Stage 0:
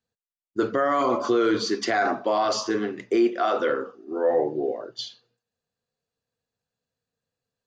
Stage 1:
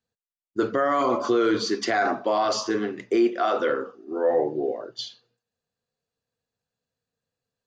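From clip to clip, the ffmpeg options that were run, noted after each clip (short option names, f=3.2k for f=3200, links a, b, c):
-af anull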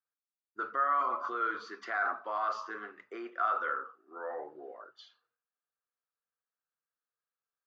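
-af "bandpass=f=1.3k:t=q:w=4:csg=0"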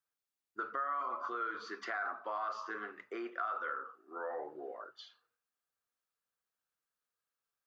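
-af "acompressor=threshold=-39dB:ratio=3,volume=2dB"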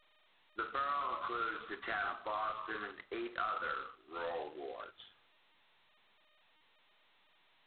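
-ar 8000 -c:a adpcm_g726 -b:a 16k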